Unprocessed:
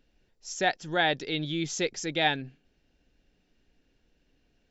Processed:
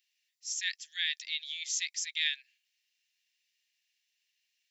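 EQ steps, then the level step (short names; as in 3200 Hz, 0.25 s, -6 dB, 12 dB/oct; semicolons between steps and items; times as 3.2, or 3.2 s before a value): steep high-pass 1800 Hz 72 dB/oct; high shelf 4900 Hz +11.5 dB; -4.5 dB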